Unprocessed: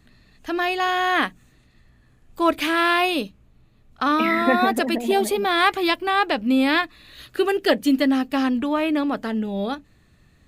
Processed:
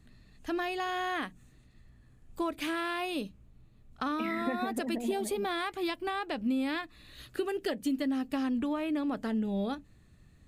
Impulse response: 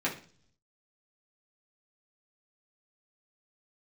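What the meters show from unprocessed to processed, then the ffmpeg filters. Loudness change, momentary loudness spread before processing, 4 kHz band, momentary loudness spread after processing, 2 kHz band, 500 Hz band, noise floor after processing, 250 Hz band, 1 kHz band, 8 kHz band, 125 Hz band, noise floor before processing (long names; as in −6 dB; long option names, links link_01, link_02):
−12.0 dB, 9 LU, −14.0 dB, 6 LU, −14.5 dB, −12.0 dB, −60 dBFS, −10.0 dB, −14.0 dB, −9.5 dB, can't be measured, −57 dBFS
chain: -af "equalizer=frequency=8600:width=1.3:gain=5,acompressor=threshold=-23dB:ratio=6,lowshelf=frequency=340:gain=7,volume=-8.5dB"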